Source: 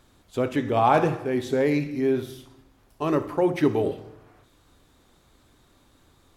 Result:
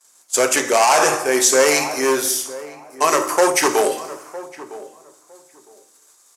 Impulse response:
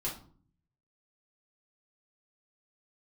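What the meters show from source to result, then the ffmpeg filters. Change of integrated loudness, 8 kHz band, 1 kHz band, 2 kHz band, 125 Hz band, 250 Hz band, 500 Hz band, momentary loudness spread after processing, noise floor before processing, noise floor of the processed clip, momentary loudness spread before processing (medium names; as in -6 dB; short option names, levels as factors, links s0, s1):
+7.5 dB, no reading, +8.0 dB, +14.0 dB, -11.5 dB, -1.5 dB, +6.5 dB, 20 LU, -61 dBFS, -54 dBFS, 10 LU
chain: -filter_complex "[0:a]agate=range=0.0224:threshold=0.00398:ratio=3:detection=peak,asoftclip=type=hard:threshold=0.126,aexciter=amount=8:drive=8.5:freq=5500,highpass=750,lowpass=7200,asplit=2[s0][s1];[s1]adelay=958,lowpass=f=1100:p=1,volume=0.158,asplit=2[s2][s3];[s3]adelay=958,lowpass=f=1100:p=1,volume=0.2[s4];[s0][s2][s4]amix=inputs=3:normalize=0,asplit=2[s5][s6];[1:a]atrim=start_sample=2205[s7];[s6][s7]afir=irnorm=-1:irlink=0,volume=0.376[s8];[s5][s8]amix=inputs=2:normalize=0,alimiter=level_in=6.31:limit=0.891:release=50:level=0:latency=1,volume=0.794"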